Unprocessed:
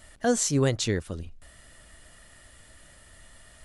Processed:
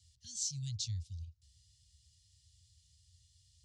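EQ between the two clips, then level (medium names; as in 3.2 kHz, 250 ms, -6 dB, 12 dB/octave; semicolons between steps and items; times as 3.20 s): high-pass 100 Hz 24 dB/octave; inverse Chebyshev band-stop 350–1200 Hz, stop band 80 dB; distance through air 190 m; +5.5 dB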